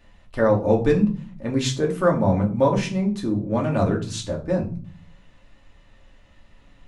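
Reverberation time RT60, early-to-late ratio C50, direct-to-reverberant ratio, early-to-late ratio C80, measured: 0.45 s, 12.0 dB, -1.0 dB, 17.0 dB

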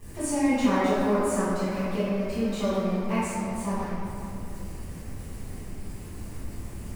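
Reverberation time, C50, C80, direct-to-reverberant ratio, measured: 2.6 s, -4.5 dB, -1.5 dB, -14.5 dB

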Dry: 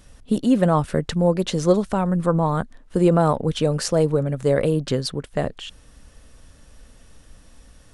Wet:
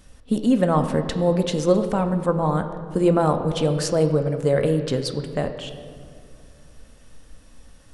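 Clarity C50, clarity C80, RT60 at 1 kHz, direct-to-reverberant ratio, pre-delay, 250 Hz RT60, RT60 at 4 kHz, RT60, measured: 9.0 dB, 10.0 dB, 2.0 s, 6.5 dB, 4 ms, 2.8 s, 1.3 s, 2.3 s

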